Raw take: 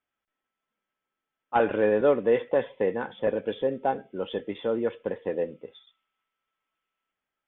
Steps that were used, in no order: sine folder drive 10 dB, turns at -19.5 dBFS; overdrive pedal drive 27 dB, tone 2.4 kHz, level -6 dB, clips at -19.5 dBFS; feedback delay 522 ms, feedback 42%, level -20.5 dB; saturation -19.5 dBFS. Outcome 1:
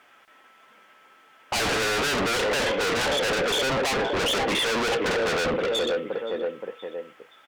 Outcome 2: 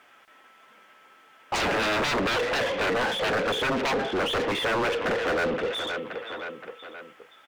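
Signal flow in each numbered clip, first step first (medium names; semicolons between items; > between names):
feedback delay > overdrive pedal > sine folder > saturation; sine folder > feedback delay > overdrive pedal > saturation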